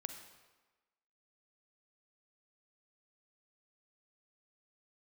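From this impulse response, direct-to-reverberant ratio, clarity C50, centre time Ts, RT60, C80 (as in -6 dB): 6.5 dB, 7.5 dB, 23 ms, 1.2 s, 9.0 dB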